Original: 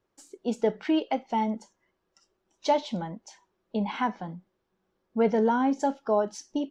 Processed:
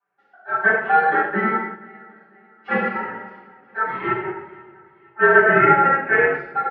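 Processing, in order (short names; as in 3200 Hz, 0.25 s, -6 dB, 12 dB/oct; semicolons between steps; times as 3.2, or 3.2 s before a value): one diode to ground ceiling -25.5 dBFS; ring modulator 1100 Hz; speaker cabinet 210–2200 Hz, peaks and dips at 250 Hz -10 dB, 380 Hz +9 dB, 620 Hz -6 dB; feedback echo 0.489 s, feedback 43%, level -17.5 dB; wow and flutter 20 cents; comb 5.1 ms, depth 53%; reverb RT60 1.1 s, pre-delay 4 ms, DRR -12.5 dB; upward expander 1.5:1, over -29 dBFS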